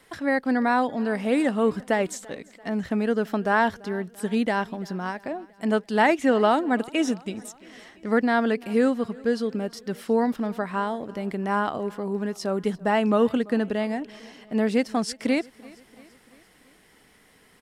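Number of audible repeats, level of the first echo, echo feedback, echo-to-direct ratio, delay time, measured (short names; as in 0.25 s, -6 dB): 3, -23.0 dB, 57%, -21.5 dB, 0.339 s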